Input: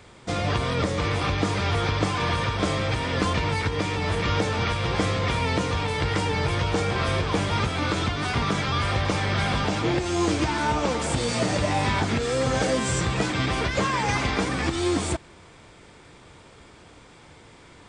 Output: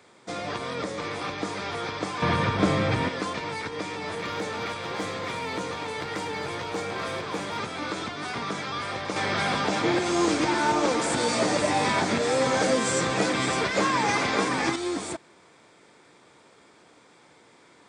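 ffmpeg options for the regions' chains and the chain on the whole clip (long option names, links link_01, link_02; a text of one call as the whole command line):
ffmpeg -i in.wav -filter_complex "[0:a]asettb=1/sr,asplit=3[link_01][link_02][link_03];[link_01]atrim=end=2.224[link_04];[link_02]atrim=start=2.22:end=3.09,asetpts=PTS-STARTPTS,afade=type=in:duration=0.004:curve=qsin,afade=type=out:start_time=0.866:duration=0.004:curve=qsin,acontrast=59,bass=frequency=250:gain=11,treble=frequency=4000:gain=-6[link_05];[link_03]atrim=start=3.086[link_06];[link_04][link_05]acrossfade=duration=0.004:curve1=hsin:curve2=qsin[link_07];[link_07][link_06]acrossfade=duration=0.004:curve1=qsin:curve2=hsin,asettb=1/sr,asplit=3[link_08][link_09][link_10];[link_08]atrim=end=4.164[link_11];[link_09]atrim=start=4.16:end=7.6,asetpts=PTS-STARTPTS,afade=type=in:duration=0.004:curve=qsin,afade=type=out:start_time=3.436:duration=0.004:curve=qsin,bandreject=frequency=5300:width=25,asoftclip=type=hard:threshold=-18dB,aecho=1:1:245:0.251,atrim=end_sample=151704[link_12];[link_10]atrim=start=7.596[link_13];[link_11][link_12]acrossfade=duration=0.004:curve1=hsin:curve2=qsin[link_14];[link_14][link_13]acrossfade=duration=0.004:curve1=qsin:curve2=hsin,asettb=1/sr,asplit=3[link_15][link_16][link_17];[link_15]atrim=end=9.164[link_18];[link_16]atrim=start=9.16:end=14.76,asetpts=PTS-STARTPTS,afade=type=in:duration=0.004:curve=qsin,afade=type=out:start_time=5.596:duration=0.004:curve=qsin,acontrast=42,aecho=1:1:561:0.422,atrim=end_sample=246960[link_19];[link_17]atrim=start=14.756[link_20];[link_18][link_19]acrossfade=duration=0.004:curve1=hsin:curve2=qsin[link_21];[link_21][link_20]acrossfade=duration=0.004:curve1=qsin:curve2=hsin,highpass=220,equalizer=frequency=2900:width_type=o:width=0.28:gain=-5,volume=-4.5dB" out.wav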